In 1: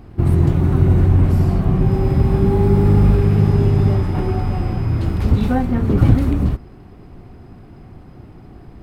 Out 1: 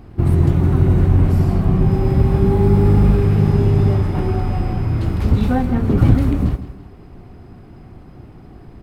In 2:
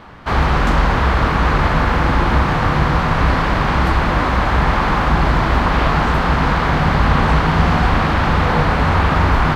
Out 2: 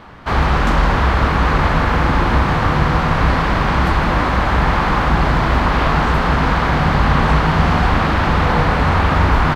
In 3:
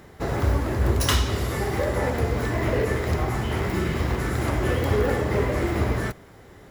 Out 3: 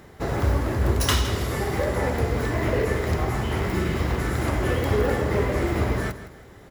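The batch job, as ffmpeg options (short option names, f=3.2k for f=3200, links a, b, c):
-af "aecho=1:1:162|324|486:0.211|0.074|0.0259"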